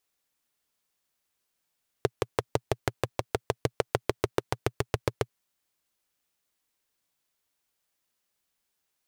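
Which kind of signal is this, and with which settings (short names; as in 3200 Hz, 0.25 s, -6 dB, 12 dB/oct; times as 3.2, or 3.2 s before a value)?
single-cylinder engine model, changing speed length 3.26 s, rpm 700, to 900, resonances 120/410 Hz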